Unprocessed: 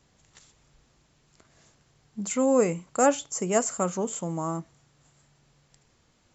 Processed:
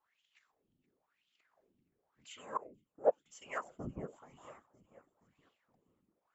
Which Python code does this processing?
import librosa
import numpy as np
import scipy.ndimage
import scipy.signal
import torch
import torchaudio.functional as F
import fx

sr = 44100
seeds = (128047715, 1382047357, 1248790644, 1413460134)

y = fx.cheby_harmonics(x, sr, harmonics=(2, 7), levels_db=(-12, -36), full_scale_db=-9.0)
y = fx.wah_lfo(y, sr, hz=0.96, low_hz=210.0, high_hz=3200.0, q=6.9)
y = fx.echo_feedback(y, sr, ms=473, feedback_pct=57, wet_db=-21.0)
y = fx.whisperise(y, sr, seeds[0])
y = fx.upward_expand(y, sr, threshold_db=-34.0, expansion=2.5, at=(2.57, 3.26))